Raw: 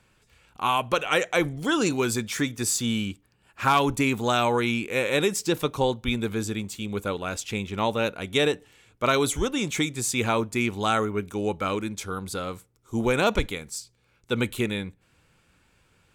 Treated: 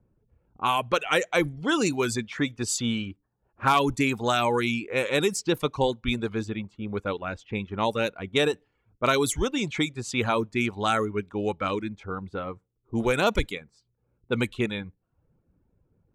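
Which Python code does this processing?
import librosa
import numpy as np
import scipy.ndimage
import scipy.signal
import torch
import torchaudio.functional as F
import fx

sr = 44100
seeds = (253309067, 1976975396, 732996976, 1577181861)

y = fx.dereverb_blind(x, sr, rt60_s=0.57)
y = fx.env_lowpass(y, sr, base_hz=430.0, full_db=-20.5)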